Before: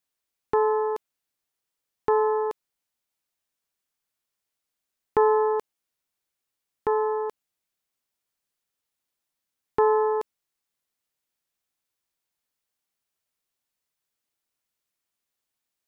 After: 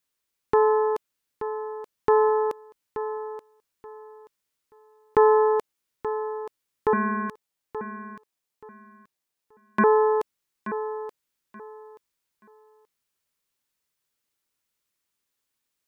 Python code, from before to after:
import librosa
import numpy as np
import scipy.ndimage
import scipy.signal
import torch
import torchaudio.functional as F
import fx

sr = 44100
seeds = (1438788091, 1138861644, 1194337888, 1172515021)

p1 = fx.peak_eq(x, sr, hz=710.0, db=-8.5, octaves=0.24)
p2 = fx.ring_mod(p1, sr, carrier_hz=640.0, at=(6.93, 9.84))
p3 = p2 + fx.echo_feedback(p2, sr, ms=879, feedback_pct=23, wet_db=-11.5, dry=0)
y = p3 * librosa.db_to_amplitude(3.0)